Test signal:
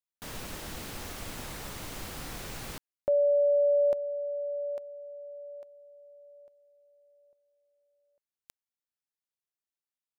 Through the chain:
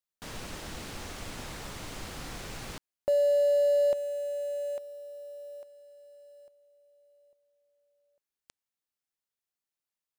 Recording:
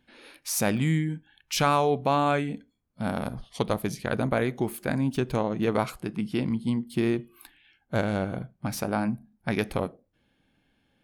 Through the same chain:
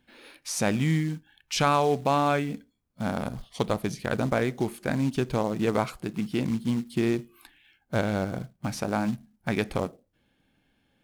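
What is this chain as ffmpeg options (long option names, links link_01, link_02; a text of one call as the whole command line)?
ffmpeg -i in.wav -filter_complex "[0:a]acrusher=bits=5:mode=log:mix=0:aa=0.000001,acrossover=split=9700[link_01][link_02];[link_02]acompressor=threshold=-57dB:ratio=4:attack=1:release=60[link_03];[link_01][link_03]amix=inputs=2:normalize=0" out.wav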